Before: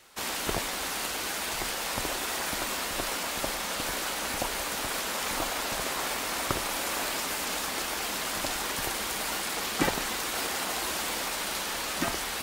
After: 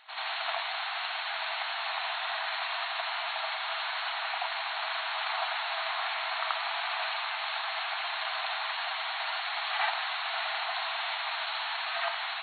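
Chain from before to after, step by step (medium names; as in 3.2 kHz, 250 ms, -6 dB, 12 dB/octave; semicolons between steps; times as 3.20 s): reverse echo 82 ms -5 dB; FFT band-pass 630–4400 Hz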